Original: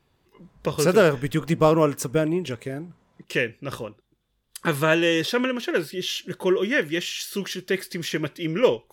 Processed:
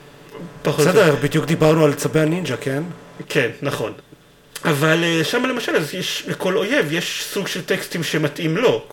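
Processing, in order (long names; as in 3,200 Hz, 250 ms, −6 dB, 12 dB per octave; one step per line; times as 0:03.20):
compressor on every frequency bin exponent 0.6
comb filter 6.9 ms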